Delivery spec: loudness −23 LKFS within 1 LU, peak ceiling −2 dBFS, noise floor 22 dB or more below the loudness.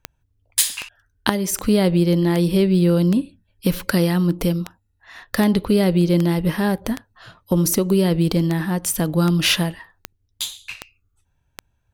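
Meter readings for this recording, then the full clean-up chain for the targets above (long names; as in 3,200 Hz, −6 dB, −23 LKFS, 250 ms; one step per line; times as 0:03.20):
number of clicks 16; integrated loudness −19.5 LKFS; sample peak −1.0 dBFS; target loudness −23.0 LKFS
→ click removal
level −3.5 dB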